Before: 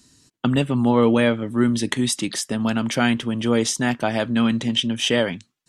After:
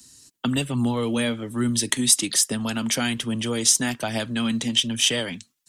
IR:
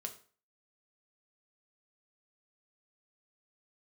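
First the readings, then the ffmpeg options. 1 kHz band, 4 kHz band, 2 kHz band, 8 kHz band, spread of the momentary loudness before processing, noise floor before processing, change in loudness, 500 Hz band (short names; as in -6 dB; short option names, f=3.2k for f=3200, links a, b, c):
-6.5 dB, +2.0 dB, -3.5 dB, +8.0 dB, 6 LU, -70 dBFS, -1.5 dB, -8.0 dB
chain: -filter_complex "[0:a]acrossover=split=190|3000[a][b][c];[b]acompressor=threshold=-23dB:ratio=3[d];[a][d][c]amix=inputs=3:normalize=0,acrossover=split=190[e][f];[f]crystalizer=i=3:c=0[g];[e][g]amix=inputs=2:normalize=0,aphaser=in_gain=1:out_gain=1:delay=4.9:decay=0.27:speed=1.2:type=triangular,volume=-3.5dB"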